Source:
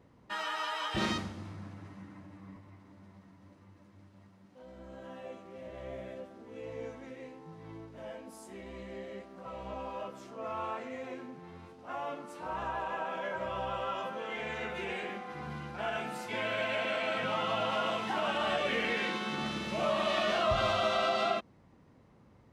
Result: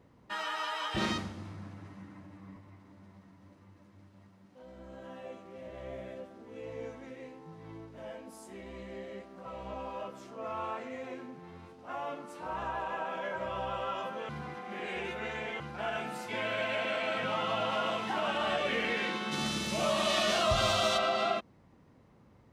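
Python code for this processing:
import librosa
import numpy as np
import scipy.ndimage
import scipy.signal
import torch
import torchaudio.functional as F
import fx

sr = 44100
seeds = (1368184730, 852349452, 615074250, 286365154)

y = fx.bass_treble(x, sr, bass_db=3, treble_db=14, at=(19.31, 20.97), fade=0.02)
y = fx.edit(y, sr, fx.reverse_span(start_s=14.29, length_s=1.31), tone=tone)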